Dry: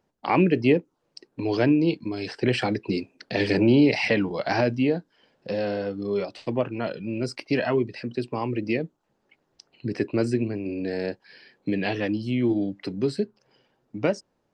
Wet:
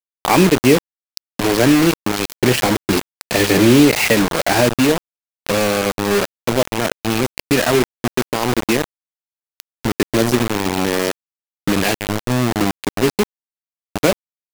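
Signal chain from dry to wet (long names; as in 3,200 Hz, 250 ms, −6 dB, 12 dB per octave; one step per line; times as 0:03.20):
0:11.95–0:12.61: drawn EQ curve 130 Hz 0 dB, 180 Hz +2 dB, 600 Hz −23 dB, 3,000 Hz −6 dB
in parallel at −2.5 dB: downward compressor 16 to 1, threshold −31 dBFS, peak gain reduction 18 dB
on the sum: bit reduction 4 bits
level +6 dB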